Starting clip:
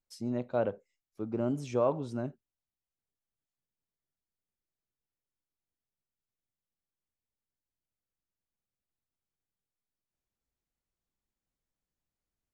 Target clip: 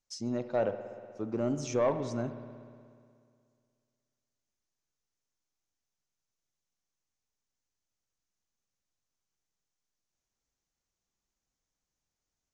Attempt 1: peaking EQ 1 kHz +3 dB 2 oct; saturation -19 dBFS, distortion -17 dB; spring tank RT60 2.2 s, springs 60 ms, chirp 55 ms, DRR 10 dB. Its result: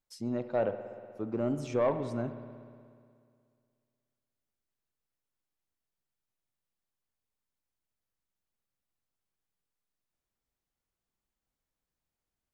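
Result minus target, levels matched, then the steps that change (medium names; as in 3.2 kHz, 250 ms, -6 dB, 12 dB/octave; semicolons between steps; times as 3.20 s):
8 kHz band -9.5 dB
add first: resonant low-pass 6.3 kHz, resonance Q 3.9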